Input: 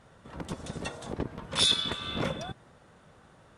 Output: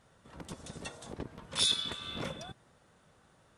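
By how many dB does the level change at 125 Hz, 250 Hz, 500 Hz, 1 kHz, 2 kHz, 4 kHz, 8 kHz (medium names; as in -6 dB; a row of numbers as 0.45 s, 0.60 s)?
-8.0 dB, -8.0 dB, -8.0 dB, -7.5 dB, -6.5 dB, -4.5 dB, -1.5 dB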